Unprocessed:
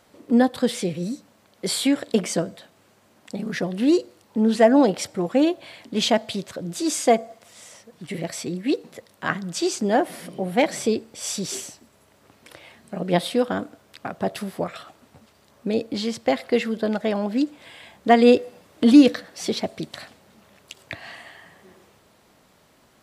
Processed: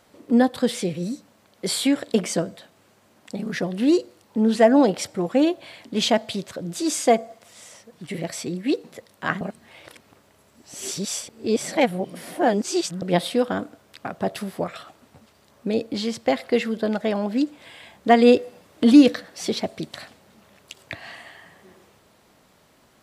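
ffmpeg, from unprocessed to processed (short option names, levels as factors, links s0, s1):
-filter_complex "[0:a]asplit=3[s0][s1][s2];[s0]atrim=end=9.412[s3];[s1]atrim=start=9.408:end=13.022,asetpts=PTS-STARTPTS,areverse[s4];[s2]atrim=start=13.018[s5];[s3][s4]acrossfade=d=0.004:c1=hsin:c2=hsin[s6];[s6][s5]acrossfade=d=0.004:c1=hsin:c2=hsin"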